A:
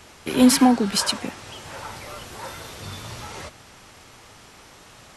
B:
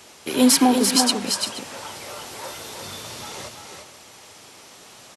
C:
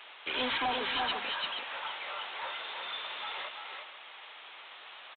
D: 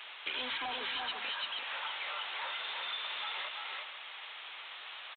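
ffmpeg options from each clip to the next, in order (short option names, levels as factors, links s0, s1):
-af "highpass=f=440:p=1,equalizer=f=1500:t=o:w=1.9:g=-6.5,aecho=1:1:308|342|480:0.106|0.562|0.15,volume=1.68"
-af "highpass=1000,aresample=8000,asoftclip=type=tanh:threshold=0.0335,aresample=44100,volume=1.26"
-af "tiltshelf=f=970:g=-4.5,acompressor=threshold=0.0178:ratio=6"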